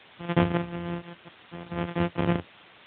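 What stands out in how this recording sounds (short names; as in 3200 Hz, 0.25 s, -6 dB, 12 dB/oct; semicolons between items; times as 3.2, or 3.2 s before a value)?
a buzz of ramps at a fixed pitch in blocks of 256 samples; random-step tremolo, depth 100%; a quantiser's noise floor 8-bit, dither triangular; AMR-NB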